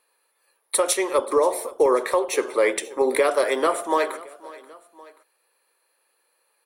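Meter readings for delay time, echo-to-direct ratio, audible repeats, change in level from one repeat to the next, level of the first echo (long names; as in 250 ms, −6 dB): 532 ms, −19.0 dB, 2, −5.0 dB, −20.0 dB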